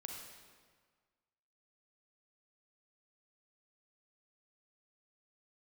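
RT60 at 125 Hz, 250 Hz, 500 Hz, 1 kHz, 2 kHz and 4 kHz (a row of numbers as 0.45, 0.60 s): 1.7, 1.6, 1.6, 1.7, 1.4, 1.3 s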